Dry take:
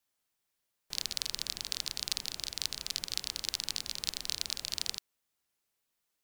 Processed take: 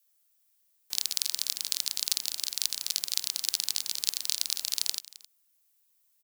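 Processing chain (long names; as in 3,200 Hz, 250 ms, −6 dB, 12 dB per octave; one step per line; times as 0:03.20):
RIAA equalisation recording
notch filter 480 Hz, Q 15
on a send: single-tap delay 264 ms −19 dB
on the sum: level −3 dB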